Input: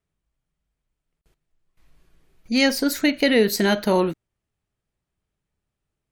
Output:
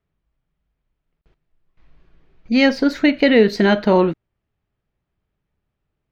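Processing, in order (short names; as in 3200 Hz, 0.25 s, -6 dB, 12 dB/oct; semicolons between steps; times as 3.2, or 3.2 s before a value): air absorption 230 m; gain +5.5 dB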